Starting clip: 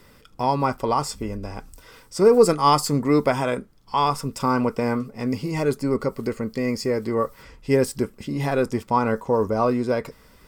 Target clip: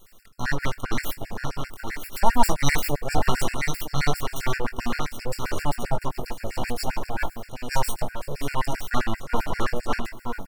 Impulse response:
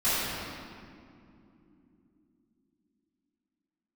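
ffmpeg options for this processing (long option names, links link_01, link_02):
-filter_complex "[0:a]highshelf=frequency=5400:gain=9.5,aecho=1:1:959:0.501,aeval=exprs='abs(val(0))':channel_layout=same,asplit=2[link_01][link_02];[link_02]adelay=21,volume=-7dB[link_03];[link_01][link_03]amix=inputs=2:normalize=0,asplit=2[link_04][link_05];[1:a]atrim=start_sample=2205,asetrate=52920,aresample=44100[link_06];[link_05][link_06]afir=irnorm=-1:irlink=0,volume=-31dB[link_07];[link_04][link_07]amix=inputs=2:normalize=0,afftfilt=real='re*gt(sin(2*PI*7.6*pts/sr)*(1-2*mod(floor(b*sr/1024/1400),2)),0)':imag='im*gt(sin(2*PI*7.6*pts/sr)*(1-2*mod(floor(b*sr/1024/1400),2)),0)':win_size=1024:overlap=0.75,volume=-1dB"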